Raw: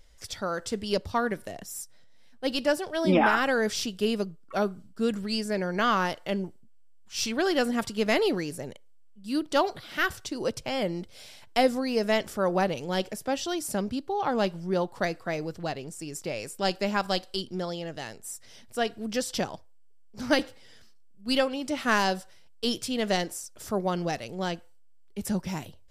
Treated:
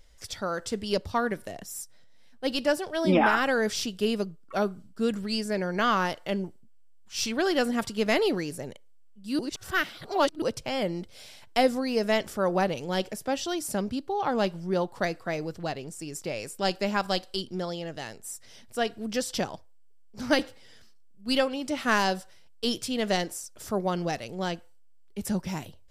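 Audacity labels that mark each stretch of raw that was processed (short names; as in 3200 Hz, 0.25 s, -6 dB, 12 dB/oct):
9.390000	10.420000	reverse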